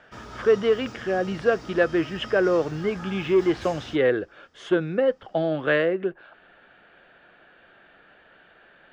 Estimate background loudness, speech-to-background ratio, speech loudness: -41.5 LUFS, 17.5 dB, -24.0 LUFS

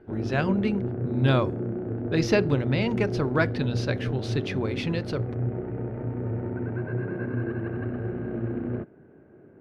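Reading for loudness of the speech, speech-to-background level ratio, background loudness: -27.5 LUFS, 3.5 dB, -31.0 LUFS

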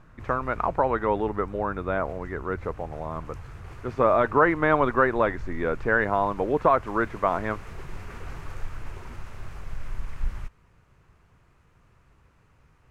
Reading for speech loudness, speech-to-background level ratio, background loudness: -25.0 LUFS, 17.5 dB, -42.5 LUFS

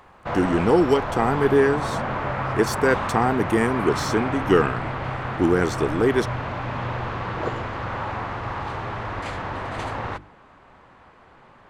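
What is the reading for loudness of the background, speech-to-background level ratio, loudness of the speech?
-28.5 LUFS, 6.5 dB, -22.0 LUFS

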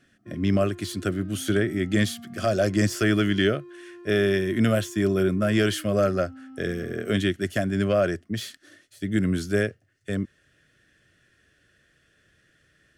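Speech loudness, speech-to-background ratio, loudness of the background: -25.0 LUFS, 20.0 dB, -45.0 LUFS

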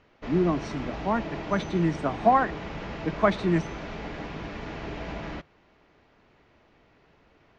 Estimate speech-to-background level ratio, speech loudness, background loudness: 10.0 dB, -26.5 LUFS, -36.5 LUFS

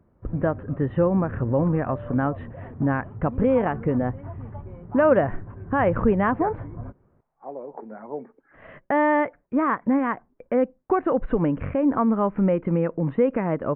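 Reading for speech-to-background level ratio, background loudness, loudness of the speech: 14.5 dB, -38.0 LUFS, -23.5 LUFS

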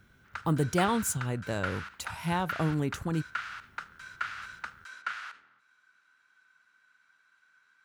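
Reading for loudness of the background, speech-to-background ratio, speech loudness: -40.0 LUFS, 9.0 dB, -31.0 LUFS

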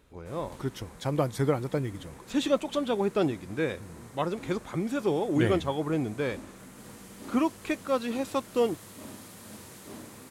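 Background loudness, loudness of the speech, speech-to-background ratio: -47.0 LUFS, -30.0 LUFS, 17.0 dB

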